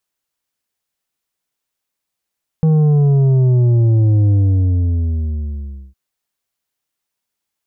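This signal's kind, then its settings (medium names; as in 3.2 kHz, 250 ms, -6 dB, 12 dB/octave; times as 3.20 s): sub drop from 160 Hz, over 3.31 s, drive 7 dB, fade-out 1.63 s, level -10 dB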